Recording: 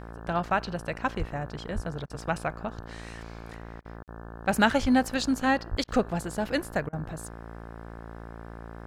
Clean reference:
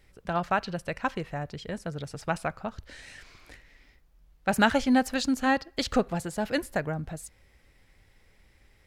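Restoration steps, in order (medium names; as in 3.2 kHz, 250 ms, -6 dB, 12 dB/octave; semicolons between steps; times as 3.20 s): de-hum 56.7 Hz, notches 31; de-plosive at 1.18/1.74/4.81/5.70 s; interpolate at 4.03 s, 48 ms; interpolate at 2.06/3.81/5.84/6.89 s, 38 ms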